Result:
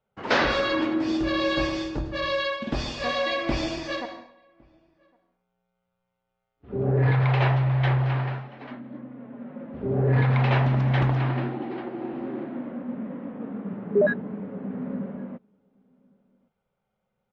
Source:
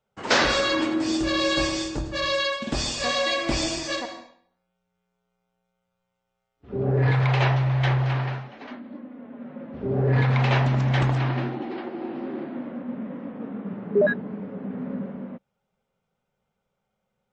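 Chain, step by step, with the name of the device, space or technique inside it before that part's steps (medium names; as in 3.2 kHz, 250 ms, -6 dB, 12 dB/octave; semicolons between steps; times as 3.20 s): shout across a valley (distance through air 200 m; echo from a far wall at 190 m, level -30 dB)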